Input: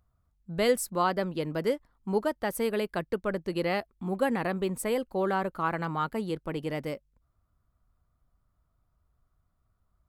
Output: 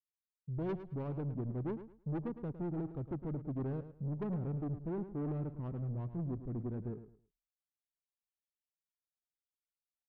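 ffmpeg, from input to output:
ffmpeg -i in.wav -af "agate=range=-49dB:threshold=-57dB:ratio=16:detection=peak,asetrate=34006,aresample=44100,atempo=1.29684,firequalizer=gain_entry='entry(110,0);entry(830,-22);entry(1300,-19);entry(2200,-25)':delay=0.05:min_phase=1,aresample=11025,asoftclip=type=tanh:threshold=-34dB,aresample=44100,adynamicsmooth=sensitivity=8:basefreq=850,aecho=1:1:108|216|324:0.251|0.0603|0.0145,volume=1dB" out.wav

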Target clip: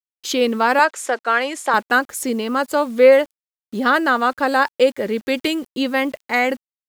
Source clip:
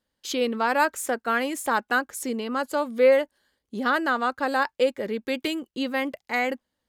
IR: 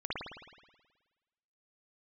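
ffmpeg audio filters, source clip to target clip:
-filter_complex "[0:a]acrusher=bits=8:mix=0:aa=0.000001,asettb=1/sr,asplit=3[link_01][link_02][link_03];[link_01]atrim=end=0.794[link_04];[link_02]atrim=start=0.79:end=1.74,asetpts=PTS-STARTPTS,afade=type=in:duration=0.004:curve=qsin,afade=type=out:start_time=0.946:duration=0.004:curve=qsin,highpass=430,lowpass=7300[link_05];[link_03]atrim=start=1.736[link_06];[link_04][link_05]acrossfade=duration=0.004:curve1=hsin:curve2=qsin[link_07];[link_07][link_06]acrossfade=duration=0.004:curve1=qsin:curve2=hsin,volume=7dB"

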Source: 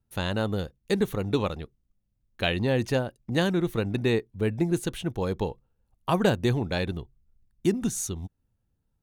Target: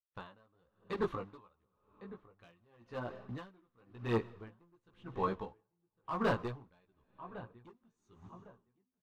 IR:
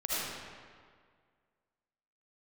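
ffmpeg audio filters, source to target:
-filter_complex "[0:a]asplit=2[link_01][link_02];[link_02]acrusher=bits=6:mix=0:aa=0.000001,volume=-6.5dB[link_03];[link_01][link_03]amix=inputs=2:normalize=0,lowpass=3400,asplit=2[link_04][link_05];[link_05]adelay=1105,lowpass=frequency=1900:poles=1,volume=-17dB,asplit=2[link_06][link_07];[link_07]adelay=1105,lowpass=frequency=1900:poles=1,volume=0.3,asplit=2[link_08][link_09];[link_09]adelay=1105,lowpass=frequency=1900:poles=1,volume=0.3[link_10];[link_04][link_06][link_08][link_10]amix=inputs=4:normalize=0,flanger=delay=15.5:depth=2.1:speed=0.57,volume=19.5dB,asoftclip=hard,volume=-19.5dB,agate=range=-33dB:threshold=-53dB:ratio=16:detection=peak,asplit=2[link_11][link_12];[1:a]atrim=start_sample=2205,adelay=58[link_13];[link_12][link_13]afir=irnorm=-1:irlink=0,volume=-26dB[link_14];[link_11][link_14]amix=inputs=2:normalize=0,aphaser=in_gain=1:out_gain=1:delay=4.6:decay=0.3:speed=1.2:type=triangular,equalizer=frequency=1100:width_type=o:width=0.62:gain=13.5,aeval=exprs='val(0)*pow(10,-37*(0.5-0.5*cos(2*PI*0.95*n/s))/20)':channel_layout=same,volume=-8dB"

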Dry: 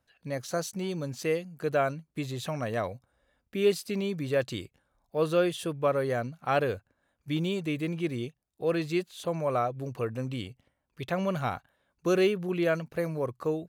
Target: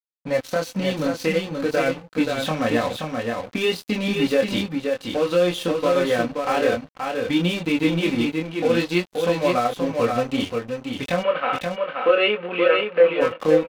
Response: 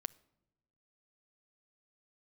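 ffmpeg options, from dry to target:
-filter_complex "[0:a]asplit=2[link_01][link_02];[link_02]acompressor=threshold=-35dB:ratio=10,volume=-1dB[link_03];[link_01][link_03]amix=inputs=2:normalize=0,aecho=1:1:3.9:0.7,asplit=2[link_04][link_05];[1:a]atrim=start_sample=2205,asetrate=42336,aresample=44100,lowpass=4300[link_06];[link_05][link_06]afir=irnorm=-1:irlink=0,volume=11dB[link_07];[link_04][link_07]amix=inputs=2:normalize=0,alimiter=limit=-6.5dB:level=0:latency=1:release=93,flanger=delay=22.5:depth=3.3:speed=0.55,aeval=exprs='sgn(val(0))*max(abs(val(0))-0.0237,0)':channel_layout=same,asplit=3[link_08][link_09][link_10];[link_08]afade=type=out:start_time=11.22:duration=0.02[link_11];[link_09]highpass=450,equalizer=frequency=510:width_type=q:width=4:gain=9,equalizer=frequency=800:width_type=q:width=4:gain=-4,equalizer=frequency=1300:width_type=q:width=4:gain=5,equalizer=frequency=2800:width_type=q:width=4:gain=6,lowpass=frequency=3000:width=0.5412,lowpass=frequency=3000:width=1.3066,afade=type=in:start_time=11.22:duration=0.02,afade=type=out:start_time=13.2:duration=0.02[link_12];[link_10]afade=type=in:start_time=13.2:duration=0.02[link_13];[link_11][link_12][link_13]amix=inputs=3:normalize=0,aecho=1:1:528:0.596,adynamicequalizer=threshold=0.02:dfrequency=2100:dqfactor=0.7:tfrequency=2100:tqfactor=0.7:attack=5:release=100:ratio=0.375:range=2.5:mode=boostabove:tftype=highshelf,volume=-1.5dB"

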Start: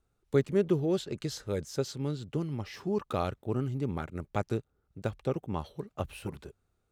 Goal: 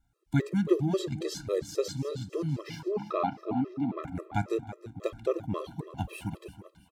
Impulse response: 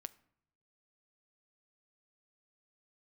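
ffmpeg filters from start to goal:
-filter_complex "[0:a]asettb=1/sr,asplit=3[link_01][link_02][link_03];[link_01]atrim=end=2.884[link_04];[link_02]atrim=start=2.88:end=4.04,asetpts=PTS-STARTPTS,afade=type=in:duration=0.004:curve=qsin,afade=type=out:start_time=1.156:duration=0.004:curve=qsin,highpass=220,equalizer=frequency=260:width_type=q:width=4:gain=7,equalizer=frequency=510:width_type=q:width=4:gain=-7,equalizer=frequency=780:width_type=q:width=4:gain=10,equalizer=frequency=1600:width_type=q:width=4:gain=-6,equalizer=frequency=3200:width_type=q:width=4:gain=-7,lowpass=frequency=3700:width=0.5412,lowpass=frequency=3700:width=1.3066[link_05];[link_03]atrim=start=4.036[link_06];[link_04][link_05]acrossfade=duration=0.004:curve1=hsin:curve2=qsin[link_07];[link_07][link_06]acrossfade=duration=0.004:curve1=qsin:curve2=hsin,aecho=1:1:327|654|981|1308:0.2|0.0858|0.0369|0.0159[link_08];[1:a]atrim=start_sample=2205[link_09];[link_08][link_09]afir=irnorm=-1:irlink=0,afftfilt=real='re*gt(sin(2*PI*3.7*pts/sr)*(1-2*mod(floor(b*sr/1024/340),2)),0)':imag='im*gt(sin(2*PI*3.7*pts/sr)*(1-2*mod(floor(b*sr/1024/340),2)),0)':win_size=1024:overlap=0.75,volume=9dB"

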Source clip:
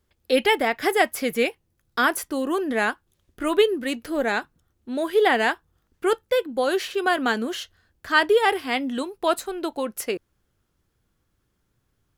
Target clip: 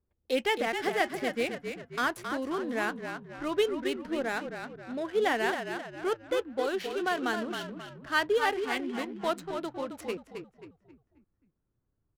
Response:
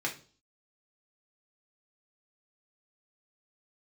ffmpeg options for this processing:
-filter_complex "[0:a]asplit=6[link_01][link_02][link_03][link_04][link_05][link_06];[link_02]adelay=267,afreqshift=-38,volume=-7dB[link_07];[link_03]adelay=534,afreqshift=-76,volume=-13.9dB[link_08];[link_04]adelay=801,afreqshift=-114,volume=-20.9dB[link_09];[link_05]adelay=1068,afreqshift=-152,volume=-27.8dB[link_10];[link_06]adelay=1335,afreqshift=-190,volume=-34.7dB[link_11];[link_01][link_07][link_08][link_09][link_10][link_11]amix=inputs=6:normalize=0,adynamicsmooth=sensitivity=7.5:basefreq=1100,volume=-8.5dB"

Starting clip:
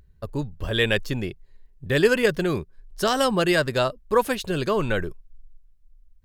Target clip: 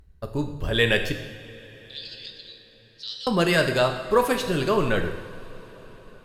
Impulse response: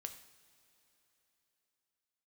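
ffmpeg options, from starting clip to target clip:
-filter_complex "[0:a]asettb=1/sr,asplit=3[link_01][link_02][link_03];[link_01]atrim=end=1.124[link_04];[link_02]atrim=start=1.12:end=3.27,asetpts=PTS-STARTPTS,afade=type=in:duration=0.004:curve=qsin,afade=type=out:start_time=2.146:duration=0.004:curve=qsin,asuperpass=centerf=4100:order=4:qfactor=3.4[link_05];[link_03]atrim=start=3.266[link_06];[link_04][link_05]acrossfade=duration=0.004:curve1=hsin:curve2=qsin[link_07];[link_07][link_06]acrossfade=duration=0.004:curve1=qsin:curve2=hsin[link_08];[1:a]atrim=start_sample=2205,asetrate=29547,aresample=44100[link_09];[link_08][link_09]afir=irnorm=-1:irlink=0,volume=3dB"

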